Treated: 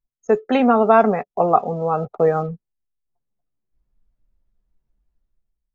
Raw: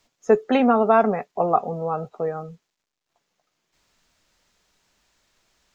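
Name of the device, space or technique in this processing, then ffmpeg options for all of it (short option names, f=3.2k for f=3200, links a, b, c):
voice memo with heavy noise removal: -af "anlmdn=0.0398,dynaudnorm=f=160:g=7:m=15dB,volume=-1dB"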